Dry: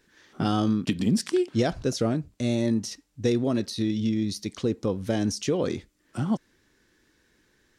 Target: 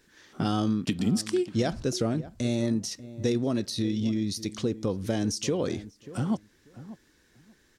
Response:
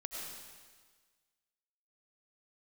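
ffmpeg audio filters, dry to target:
-filter_complex "[0:a]bass=frequency=250:gain=1,treble=frequency=4000:gain=3,asplit=2[link_01][link_02];[link_02]acompressor=threshold=-30dB:ratio=6,volume=0.5dB[link_03];[link_01][link_03]amix=inputs=2:normalize=0,asplit=2[link_04][link_05];[link_05]adelay=589,lowpass=frequency=1300:poles=1,volume=-15.5dB,asplit=2[link_06][link_07];[link_07]adelay=589,lowpass=frequency=1300:poles=1,volume=0.18[link_08];[link_04][link_06][link_08]amix=inputs=3:normalize=0,volume=-5.5dB"

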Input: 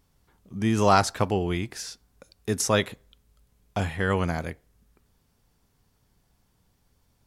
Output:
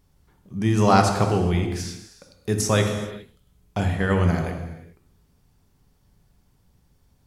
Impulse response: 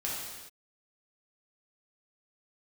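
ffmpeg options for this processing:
-filter_complex "[0:a]asplit=2[link_01][link_02];[1:a]atrim=start_sample=2205,lowshelf=frequency=440:gain=9.5[link_03];[link_02][link_03]afir=irnorm=-1:irlink=0,volume=-6dB[link_04];[link_01][link_04]amix=inputs=2:normalize=0,volume=-3dB"

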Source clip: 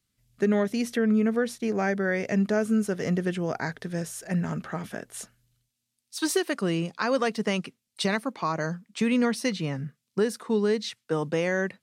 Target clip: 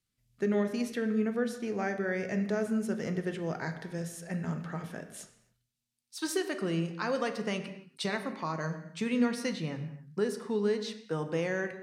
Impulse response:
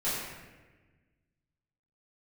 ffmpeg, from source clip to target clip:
-filter_complex "[0:a]asplit=2[link_01][link_02];[1:a]atrim=start_sample=2205,afade=type=out:start_time=0.34:duration=0.01,atrim=end_sample=15435,lowpass=8200[link_03];[link_02][link_03]afir=irnorm=-1:irlink=0,volume=-14dB[link_04];[link_01][link_04]amix=inputs=2:normalize=0,volume=-7.5dB"

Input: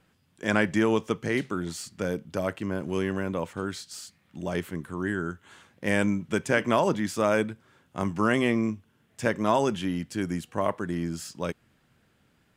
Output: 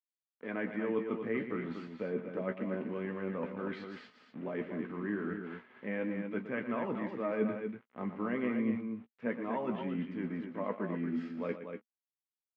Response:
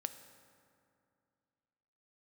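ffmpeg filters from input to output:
-filter_complex "[0:a]equalizer=frequency=280:width=0.35:gain=2.5,bandreject=frequency=1400:width=8.8,areverse,acompressor=threshold=-37dB:ratio=5,areverse,flanger=delay=0.7:depth=9.2:regen=61:speed=0.3:shape=sinusoidal,aeval=exprs='val(0)*gte(abs(val(0)),0.00158)':channel_layout=same,highpass=180,equalizer=frequency=230:width_type=q:width=4:gain=10,equalizer=frequency=470:width_type=q:width=4:gain=6,equalizer=frequency=1300:width_type=q:width=4:gain=5,equalizer=frequency=2100:width_type=q:width=4:gain=5,lowpass=frequency=2600:width=0.5412,lowpass=frequency=2600:width=1.3066,asplit=2[link_01][link_02];[link_02]adelay=16,volume=-8dB[link_03];[link_01][link_03]amix=inputs=2:normalize=0,asplit=2[link_04][link_05];[link_05]aecho=0:1:116.6|239.1:0.282|0.447[link_06];[link_04][link_06]amix=inputs=2:normalize=0,volume=4dB"

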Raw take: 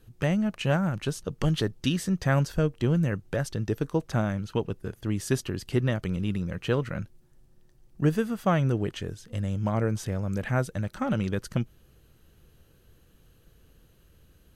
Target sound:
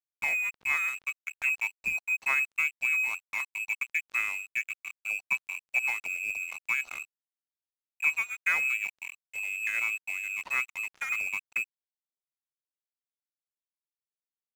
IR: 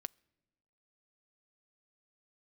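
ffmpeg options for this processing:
-filter_complex "[0:a]lowpass=frequency=2300:width_type=q:width=0.5098,lowpass=frequency=2300:width_type=q:width=0.6013,lowpass=frequency=2300:width_type=q:width=0.9,lowpass=frequency=2300:width_type=q:width=2.563,afreqshift=-2700[link_01];[1:a]atrim=start_sample=2205,asetrate=52920,aresample=44100[link_02];[link_01][link_02]afir=irnorm=-1:irlink=0,aeval=exprs='sgn(val(0))*max(abs(val(0))-0.00841,0)':channel_layout=same,volume=2.5dB"

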